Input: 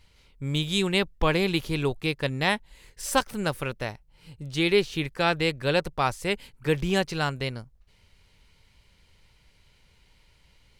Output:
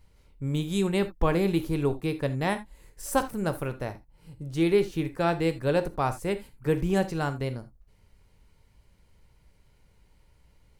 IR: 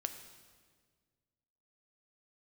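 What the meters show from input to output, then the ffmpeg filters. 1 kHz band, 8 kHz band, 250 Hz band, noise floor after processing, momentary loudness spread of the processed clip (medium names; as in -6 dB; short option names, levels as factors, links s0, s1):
-2.0 dB, -4.0 dB, +1.0 dB, -62 dBFS, 11 LU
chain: -filter_complex "[0:a]equalizer=f=3400:t=o:w=2.2:g=-12.5[s0];[1:a]atrim=start_sample=2205,atrim=end_sample=3969[s1];[s0][s1]afir=irnorm=-1:irlink=0,volume=1.26"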